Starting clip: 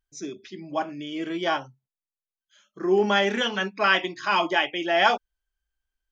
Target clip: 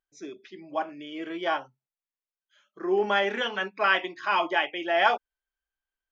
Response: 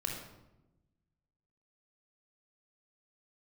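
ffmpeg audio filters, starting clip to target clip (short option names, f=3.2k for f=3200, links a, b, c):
-af "bass=f=250:g=-13,treble=f=4k:g=-12,volume=-1.5dB"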